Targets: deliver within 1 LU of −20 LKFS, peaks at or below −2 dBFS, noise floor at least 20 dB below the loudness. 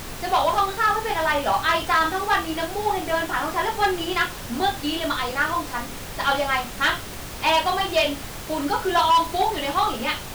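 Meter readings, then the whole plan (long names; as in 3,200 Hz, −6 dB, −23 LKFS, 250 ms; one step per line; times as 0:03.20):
share of clipped samples 0.9%; peaks flattened at −13.5 dBFS; background noise floor −35 dBFS; target noise floor −43 dBFS; integrated loudness −22.5 LKFS; sample peak −13.5 dBFS; target loudness −20.0 LKFS
→ clipped peaks rebuilt −13.5 dBFS
noise reduction from a noise print 8 dB
level +2.5 dB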